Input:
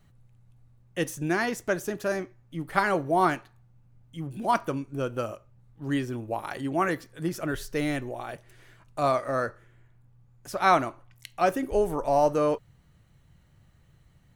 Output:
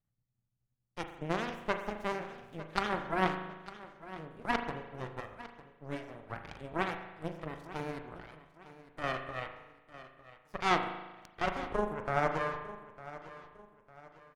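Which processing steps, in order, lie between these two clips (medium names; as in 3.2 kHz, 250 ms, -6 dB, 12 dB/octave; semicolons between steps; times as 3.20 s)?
1.53–2.60 s: jump at every zero crossing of -32 dBFS; low-pass 2.6 kHz 6 dB/octave; in parallel at +2 dB: compression, threshold -33 dBFS, peak gain reduction 16 dB; on the sum: Chebyshev shaper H 2 -9 dB, 3 -35 dB, 4 -7 dB, 7 -18 dB, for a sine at -5 dBFS; on a send: feedback delay 903 ms, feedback 38%, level -16 dB; on the sum: spring tank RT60 1.1 s, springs 38 ms, chirp 55 ms, DRR 6 dB; trim -9 dB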